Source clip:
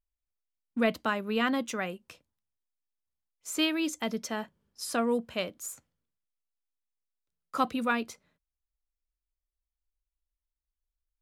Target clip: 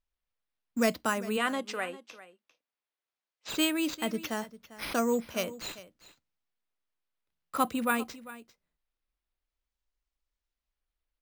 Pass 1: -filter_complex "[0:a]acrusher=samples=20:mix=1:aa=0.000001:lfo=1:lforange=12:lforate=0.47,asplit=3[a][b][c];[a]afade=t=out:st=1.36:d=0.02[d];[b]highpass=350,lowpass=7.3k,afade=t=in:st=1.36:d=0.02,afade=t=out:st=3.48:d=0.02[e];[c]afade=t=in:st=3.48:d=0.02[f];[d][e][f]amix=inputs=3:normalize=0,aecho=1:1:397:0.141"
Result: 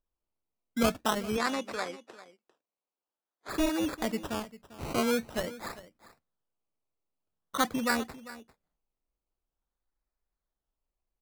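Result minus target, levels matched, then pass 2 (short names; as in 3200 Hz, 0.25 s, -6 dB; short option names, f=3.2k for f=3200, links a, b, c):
decimation with a swept rate: distortion +10 dB
-filter_complex "[0:a]acrusher=samples=5:mix=1:aa=0.000001:lfo=1:lforange=3:lforate=0.47,asplit=3[a][b][c];[a]afade=t=out:st=1.36:d=0.02[d];[b]highpass=350,lowpass=7.3k,afade=t=in:st=1.36:d=0.02,afade=t=out:st=3.48:d=0.02[e];[c]afade=t=in:st=3.48:d=0.02[f];[d][e][f]amix=inputs=3:normalize=0,aecho=1:1:397:0.141"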